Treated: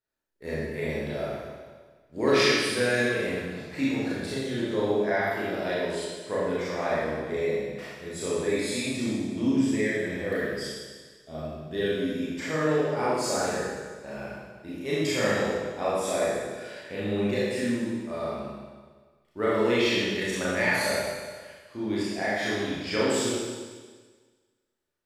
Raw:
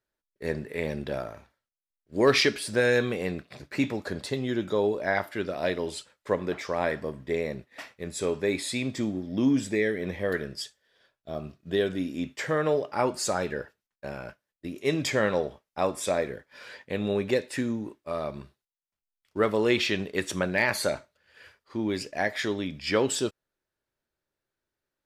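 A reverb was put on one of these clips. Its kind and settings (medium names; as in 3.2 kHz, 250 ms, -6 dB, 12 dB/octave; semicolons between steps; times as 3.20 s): Schroeder reverb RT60 1.5 s, combs from 26 ms, DRR -8.5 dB; trim -8 dB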